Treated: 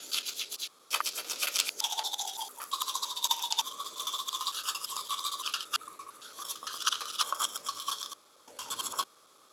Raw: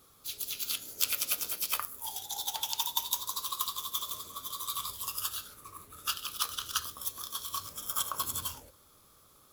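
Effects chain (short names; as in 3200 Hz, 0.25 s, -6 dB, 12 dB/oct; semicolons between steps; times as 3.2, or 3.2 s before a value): slices in reverse order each 0.113 s, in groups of 8; BPF 360–8000 Hz; gain +4.5 dB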